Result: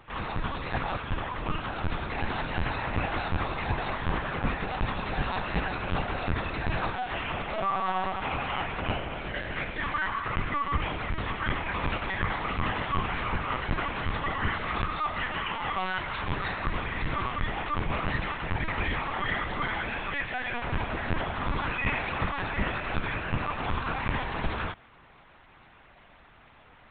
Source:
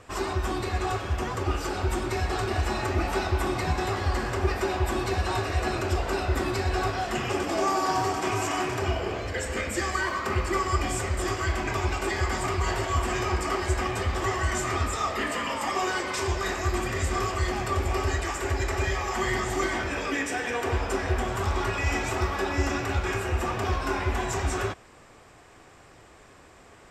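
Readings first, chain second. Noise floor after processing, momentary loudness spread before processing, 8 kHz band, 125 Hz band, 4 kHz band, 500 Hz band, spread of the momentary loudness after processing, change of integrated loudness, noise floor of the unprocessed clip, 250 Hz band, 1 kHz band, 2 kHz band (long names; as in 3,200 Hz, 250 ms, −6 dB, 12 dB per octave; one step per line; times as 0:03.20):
−55 dBFS, 2 LU, below −40 dB, −4.5 dB, −2.5 dB, −7.5 dB, 3 LU, −3.0 dB, −52 dBFS, −4.0 dB, −2.0 dB, −0.5 dB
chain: parametric band 260 Hz −13 dB 1.7 octaves
linear-prediction vocoder at 8 kHz pitch kept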